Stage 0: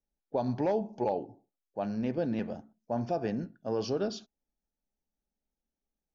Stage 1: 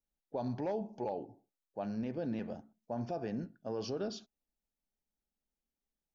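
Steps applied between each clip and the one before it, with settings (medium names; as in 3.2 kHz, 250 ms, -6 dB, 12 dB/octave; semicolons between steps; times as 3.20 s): peak limiter -24 dBFS, peak gain reduction 4.5 dB; trim -4 dB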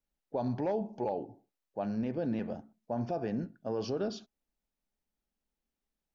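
treble shelf 4.3 kHz -6.5 dB; trim +4 dB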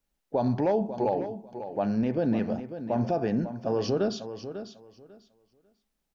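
feedback delay 546 ms, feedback 19%, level -11 dB; trim +7 dB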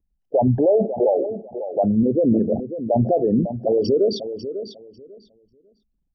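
resonances exaggerated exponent 3; trim +8.5 dB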